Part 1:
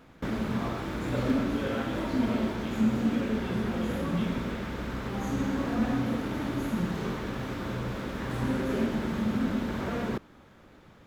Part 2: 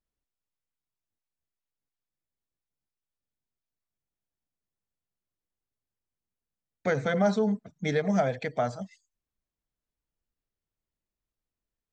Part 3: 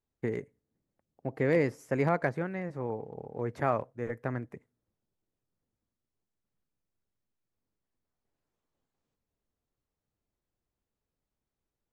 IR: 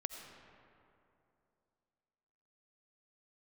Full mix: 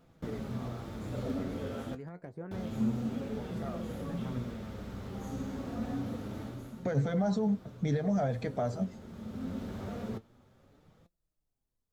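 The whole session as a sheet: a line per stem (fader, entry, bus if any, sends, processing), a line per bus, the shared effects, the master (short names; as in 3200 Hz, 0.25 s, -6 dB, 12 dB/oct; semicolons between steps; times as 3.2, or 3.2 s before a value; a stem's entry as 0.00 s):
-2.5 dB, 0.00 s, muted 1.95–2.51, no send, thirty-one-band EQ 100 Hz +6 dB, 315 Hz -6 dB, 1000 Hz -6 dB, 1600 Hz -4 dB; auto duck -10 dB, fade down 0.45 s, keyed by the second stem
+2.0 dB, 0.00 s, no send, low shelf 350 Hz +7.5 dB; limiter -19.5 dBFS, peak gain reduction 8.5 dB
-3.0 dB, 0.00 s, no send, compressor 6:1, threshold -34 dBFS, peak gain reduction 12.5 dB; phaser 0.4 Hz, delay 1.7 ms, feedback 52%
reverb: off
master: flange 0.27 Hz, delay 5.7 ms, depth 6.5 ms, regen +58%; bell 2300 Hz -7 dB 1.3 oct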